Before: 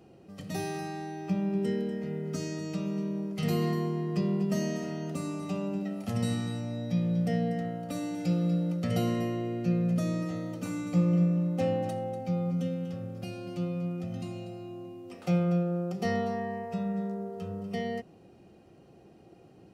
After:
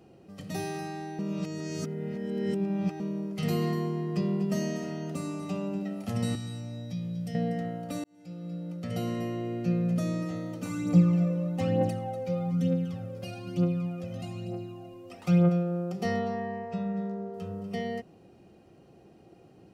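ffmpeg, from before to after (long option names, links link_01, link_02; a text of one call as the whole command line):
ffmpeg -i in.wav -filter_complex "[0:a]asettb=1/sr,asplit=3[link_01][link_02][link_03];[link_01]atrim=end=6.354[link_04];[link_02]atrim=start=6.35:end=7.35,asetpts=PTS-STARTPTS,afade=type=in:duration=0.004:curve=qsin,afade=type=out:start_time=0.996:duration=0.004:curve=qsin,acrossover=split=140|3000[link_05][link_06][link_07];[link_06]acompressor=threshold=-42dB:ratio=4:attack=3.2:release=140:knee=2.83:detection=peak[link_08];[link_05][link_08][link_07]amix=inputs=3:normalize=0[link_09];[link_03]atrim=start=7.346[link_10];[link_04][link_09]acrossfade=duration=0.004:curve1=hsin:curve2=qsin[link_11];[link_11][link_10]acrossfade=duration=0.004:curve1=qsin:curve2=hsin,asplit=3[link_12][link_13][link_14];[link_12]afade=type=out:start_time=10.68:duration=0.02[link_15];[link_13]aphaser=in_gain=1:out_gain=1:delay=2.1:decay=0.57:speed=1.1:type=triangular,afade=type=in:start_time=10.68:duration=0.02,afade=type=out:start_time=15.48:duration=0.02[link_16];[link_14]afade=type=in:start_time=15.48:duration=0.02[link_17];[link_15][link_16][link_17]amix=inputs=3:normalize=0,asettb=1/sr,asplit=3[link_18][link_19][link_20];[link_18]atrim=end=16.194[link_21];[link_19]atrim=start=16.19:end=17.34,asetpts=PTS-STARTPTS,afade=type=in:duration=0.004:curve=qsin,afade=type=out:start_time=1.146:duration=0.004:curve=qsin,lowpass=5700[link_22];[link_20]atrim=start=17.336[link_23];[link_21][link_22]acrossfade=duration=0.004:curve1=hsin:curve2=qsin[link_24];[link_24][link_23]acrossfade=duration=0.004:curve1=qsin:curve2=hsin,asplit=4[link_25][link_26][link_27][link_28];[link_25]atrim=end=1.192[link_29];[link_26]atrim=start=1.188:end=3.002,asetpts=PTS-STARTPTS,areverse[link_30];[link_27]atrim=start=2.998:end=8.04,asetpts=PTS-STARTPTS,afade=type=out:start_time=5.038:duration=0.004:curve=hsin[link_31];[link_28]atrim=start=8.04,asetpts=PTS-STARTPTS,afade=type=in:duration=1.5[link_32];[link_29][link_30]acrossfade=duration=0.004:curve1=hsin:curve2=hsin[link_33];[link_31][link_32]concat=n=2:v=0:a=1[link_34];[link_33][link_34]acrossfade=duration=0.004:curve1=hsin:curve2=hsin" out.wav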